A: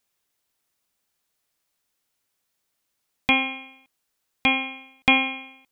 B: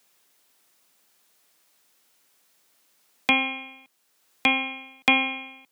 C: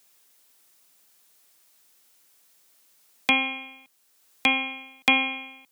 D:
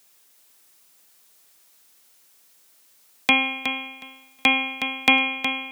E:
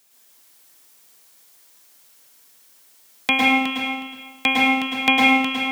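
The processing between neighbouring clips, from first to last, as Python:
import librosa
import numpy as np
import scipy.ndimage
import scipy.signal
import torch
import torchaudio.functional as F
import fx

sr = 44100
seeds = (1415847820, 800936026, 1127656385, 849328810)

y1 = scipy.signal.sosfilt(scipy.signal.butter(2, 190.0, 'highpass', fs=sr, output='sos'), x)
y1 = fx.band_squash(y1, sr, depth_pct=40)
y2 = fx.high_shelf(y1, sr, hz=4800.0, db=6.5)
y2 = y2 * librosa.db_to_amplitude(-1.5)
y3 = fx.echo_feedback(y2, sr, ms=366, feedback_pct=17, wet_db=-8)
y3 = y3 * librosa.db_to_amplitude(3.0)
y4 = fx.rev_plate(y3, sr, seeds[0], rt60_s=0.91, hf_ratio=0.95, predelay_ms=95, drr_db=-4.0)
y4 = y4 * librosa.db_to_amplitude(-1.5)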